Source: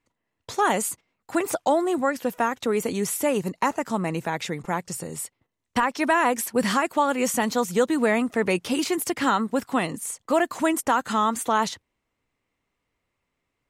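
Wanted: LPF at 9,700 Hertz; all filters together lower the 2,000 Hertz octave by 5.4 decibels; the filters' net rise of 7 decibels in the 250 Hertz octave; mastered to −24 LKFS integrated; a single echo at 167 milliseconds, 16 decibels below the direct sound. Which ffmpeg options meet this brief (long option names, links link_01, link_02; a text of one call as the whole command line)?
ffmpeg -i in.wav -af "lowpass=9700,equalizer=frequency=250:width_type=o:gain=8.5,equalizer=frequency=2000:width_type=o:gain=-7,aecho=1:1:167:0.158,volume=-2.5dB" out.wav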